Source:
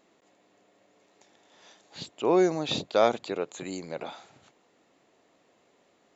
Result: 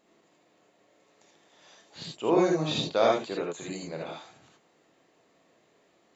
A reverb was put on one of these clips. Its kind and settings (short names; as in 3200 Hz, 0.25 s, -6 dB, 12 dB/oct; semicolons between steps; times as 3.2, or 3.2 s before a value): non-linear reverb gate 0.1 s rising, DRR -1.5 dB; gain -3.5 dB